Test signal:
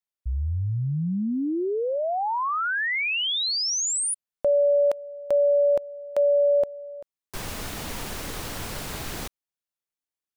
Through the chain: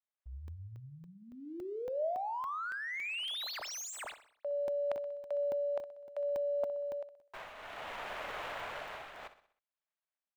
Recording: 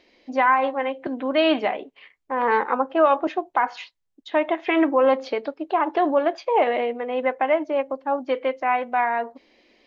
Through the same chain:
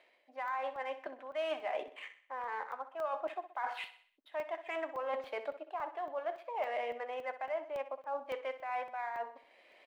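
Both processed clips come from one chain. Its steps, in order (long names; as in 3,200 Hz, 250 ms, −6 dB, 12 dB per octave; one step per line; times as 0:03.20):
running median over 9 samples
three-way crossover with the lows and the highs turned down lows −22 dB, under 580 Hz, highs −13 dB, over 4,200 Hz
shaped tremolo triangle 0.63 Hz, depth 80%
reversed playback
downward compressor 5 to 1, threshold −42 dBFS
reversed playback
parametric band 620 Hz +6 dB 0.28 octaves
on a send: repeating echo 63 ms, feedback 47%, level −13 dB
on the sum: regular buffer underruns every 0.28 s, samples 64, zero, from 0:00.48
level +3.5 dB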